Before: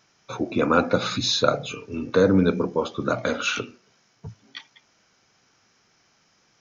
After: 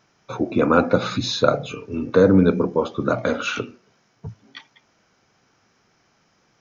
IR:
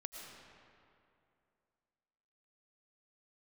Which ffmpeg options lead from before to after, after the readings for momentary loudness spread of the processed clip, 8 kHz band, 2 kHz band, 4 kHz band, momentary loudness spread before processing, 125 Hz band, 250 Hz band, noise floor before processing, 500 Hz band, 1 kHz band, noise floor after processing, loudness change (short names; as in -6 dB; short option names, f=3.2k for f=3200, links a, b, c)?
20 LU, n/a, +0.5 dB, -2.5 dB, 20 LU, +4.0 dB, +4.0 dB, -64 dBFS, +3.5 dB, +2.0 dB, -64 dBFS, +3.0 dB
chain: -af "highshelf=f=2.1k:g=-8.5,volume=4dB"